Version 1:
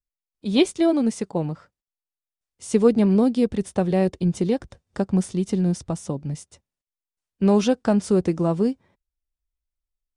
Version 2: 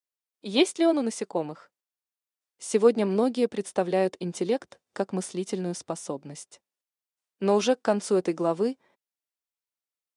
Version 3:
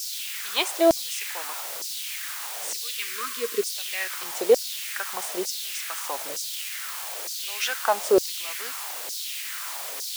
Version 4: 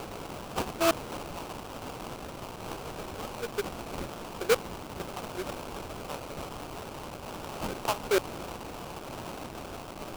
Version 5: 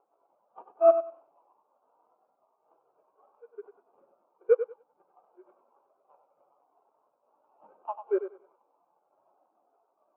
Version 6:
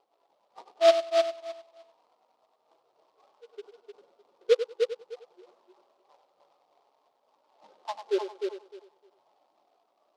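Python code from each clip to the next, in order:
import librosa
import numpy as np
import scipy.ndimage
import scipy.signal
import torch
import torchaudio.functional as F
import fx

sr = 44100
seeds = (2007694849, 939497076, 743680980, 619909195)

y1 = scipy.signal.sosfilt(scipy.signal.butter(2, 360.0, 'highpass', fs=sr, output='sos'), x)
y2 = fx.quant_dither(y1, sr, seeds[0], bits=6, dither='triangular')
y2 = fx.filter_lfo_highpass(y2, sr, shape='saw_down', hz=1.1, low_hz=430.0, high_hz=5500.0, q=2.8)
y2 = fx.spec_box(y2, sr, start_s=2.84, length_s=0.79, low_hz=480.0, high_hz=1000.0, gain_db=-26)
y2 = y2 * librosa.db_to_amplitude(1.5)
y3 = fx.sample_hold(y2, sr, seeds[1], rate_hz=1900.0, jitter_pct=20)
y3 = y3 * librosa.db_to_amplitude(-7.0)
y4 = fx.bandpass_q(y3, sr, hz=1100.0, q=0.61)
y4 = fx.echo_feedback(y4, sr, ms=96, feedback_pct=50, wet_db=-4.5)
y4 = fx.spectral_expand(y4, sr, expansion=2.5)
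y4 = y4 * librosa.db_to_amplitude(4.0)
y5 = fx.echo_feedback(y4, sr, ms=305, feedback_pct=17, wet_db=-5.0)
y5 = fx.noise_mod_delay(y5, sr, seeds[2], noise_hz=3000.0, depth_ms=0.043)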